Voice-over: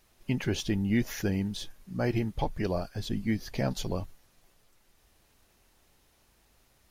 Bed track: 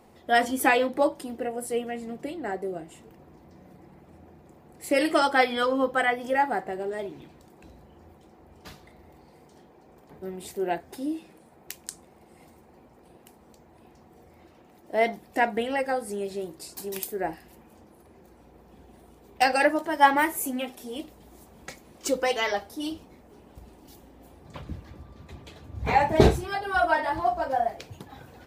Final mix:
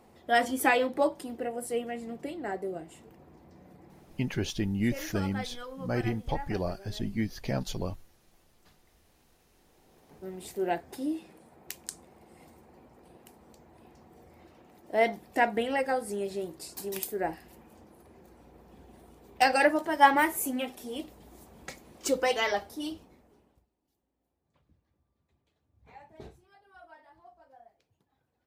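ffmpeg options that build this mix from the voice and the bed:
-filter_complex "[0:a]adelay=3900,volume=0.841[s0];[1:a]volume=4.73,afade=t=out:st=4.01:d=0.43:silence=0.177828,afade=t=in:st=9.52:d=1.17:silence=0.149624,afade=t=out:st=22.61:d=1.06:silence=0.0354813[s1];[s0][s1]amix=inputs=2:normalize=0"

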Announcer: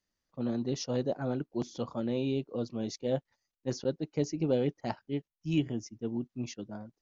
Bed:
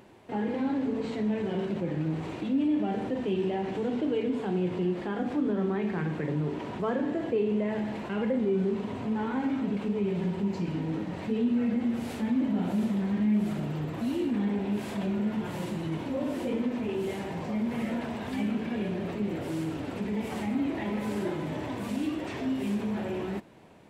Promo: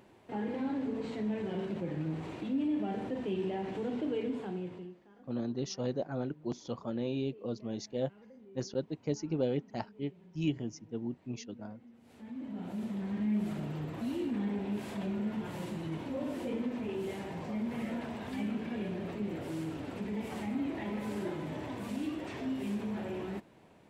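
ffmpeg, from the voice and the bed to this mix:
-filter_complex "[0:a]adelay=4900,volume=0.708[s0];[1:a]volume=7.08,afade=t=out:st=4.26:d=0.73:silence=0.0749894,afade=t=in:st=12.02:d=1.37:silence=0.0749894[s1];[s0][s1]amix=inputs=2:normalize=0"

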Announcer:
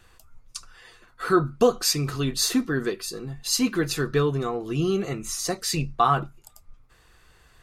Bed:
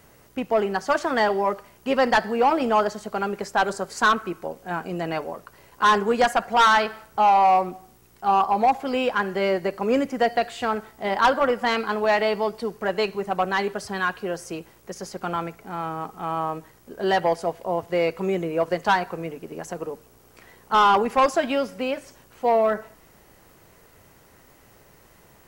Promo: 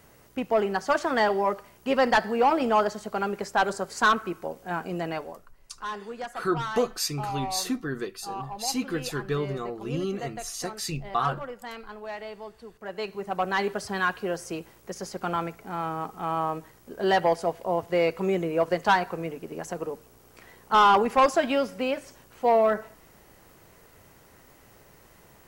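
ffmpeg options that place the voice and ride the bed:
-filter_complex "[0:a]adelay=5150,volume=0.501[s0];[1:a]volume=4.73,afade=t=out:st=4.98:d=0.55:silence=0.188365,afade=t=in:st=12.75:d=0.99:silence=0.16788[s1];[s0][s1]amix=inputs=2:normalize=0"

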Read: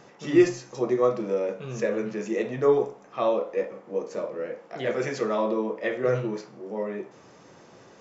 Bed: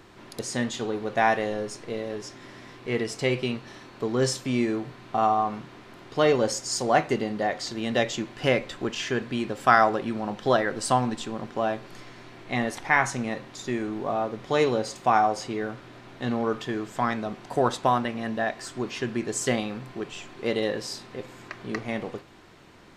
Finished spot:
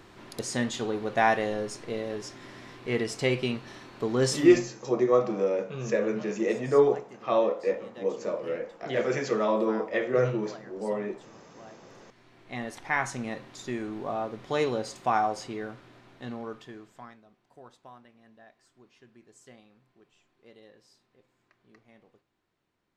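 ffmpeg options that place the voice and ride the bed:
-filter_complex "[0:a]adelay=4100,volume=1[s0];[1:a]volume=7.94,afade=t=out:st=4.41:d=0.23:silence=0.0749894,afade=t=in:st=11.8:d=1.45:silence=0.112202,afade=t=out:st=15.32:d=1.89:silence=0.0707946[s1];[s0][s1]amix=inputs=2:normalize=0"

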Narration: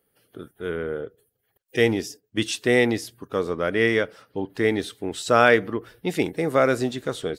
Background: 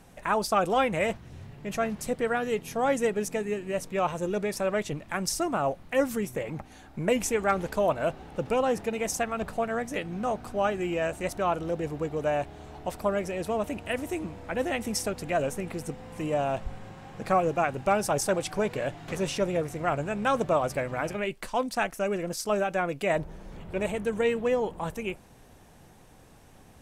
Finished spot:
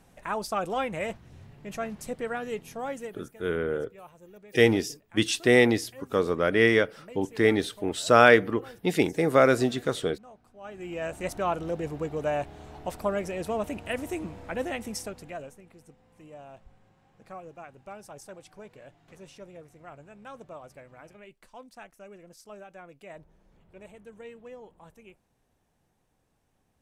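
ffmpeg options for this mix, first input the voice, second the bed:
-filter_complex "[0:a]adelay=2800,volume=1[s0];[1:a]volume=5.96,afade=t=out:st=2.57:d=0.73:silence=0.149624,afade=t=in:st=10.6:d=0.68:silence=0.0944061,afade=t=out:st=14.41:d=1.17:silence=0.125893[s1];[s0][s1]amix=inputs=2:normalize=0"

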